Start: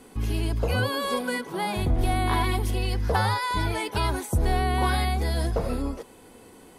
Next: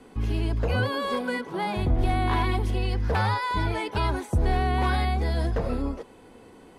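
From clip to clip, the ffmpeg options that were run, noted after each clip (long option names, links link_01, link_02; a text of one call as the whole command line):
ffmpeg -i in.wav -filter_complex "[0:a]aemphasis=mode=reproduction:type=50fm,acrossover=split=450|930[link_01][link_02][link_03];[link_02]aeval=exprs='0.0355*(abs(mod(val(0)/0.0355+3,4)-2)-1)':channel_layout=same[link_04];[link_01][link_04][link_03]amix=inputs=3:normalize=0" out.wav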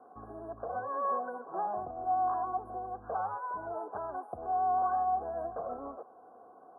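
ffmpeg -i in.wav -filter_complex "[0:a]alimiter=limit=-21dB:level=0:latency=1:release=326,asplit=3[link_01][link_02][link_03];[link_01]bandpass=frequency=730:width_type=q:width=8,volume=0dB[link_04];[link_02]bandpass=frequency=1090:width_type=q:width=8,volume=-6dB[link_05];[link_03]bandpass=frequency=2440:width_type=q:width=8,volume=-9dB[link_06];[link_04][link_05][link_06]amix=inputs=3:normalize=0,afftfilt=real='re*(1-between(b*sr/4096,1700,8800))':imag='im*(1-between(b*sr/4096,1700,8800))':win_size=4096:overlap=0.75,volume=7.5dB" out.wav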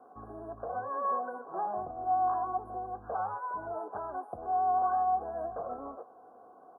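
ffmpeg -i in.wav -filter_complex "[0:a]asplit=2[link_01][link_02];[link_02]adelay=19,volume=-12.5dB[link_03];[link_01][link_03]amix=inputs=2:normalize=0" out.wav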